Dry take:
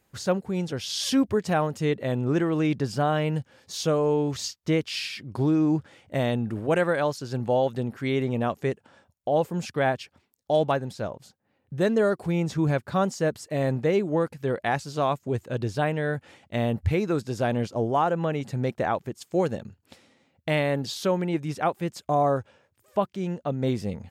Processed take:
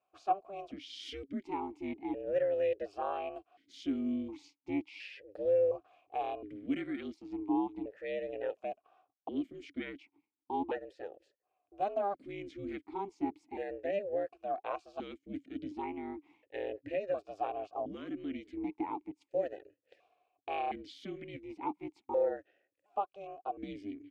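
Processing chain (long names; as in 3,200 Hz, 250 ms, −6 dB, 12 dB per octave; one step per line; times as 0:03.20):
ring modulation 200 Hz
formant filter that steps through the vowels 1.4 Hz
level +2 dB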